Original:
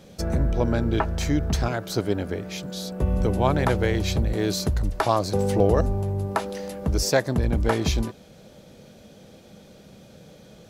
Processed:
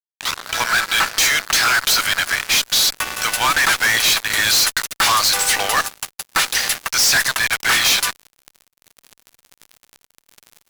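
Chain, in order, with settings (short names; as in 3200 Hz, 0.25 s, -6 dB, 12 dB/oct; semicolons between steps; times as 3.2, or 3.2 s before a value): tape start at the beginning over 0.52 s; HPF 1400 Hz 24 dB/oct; fuzz box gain 49 dB, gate -50 dBFS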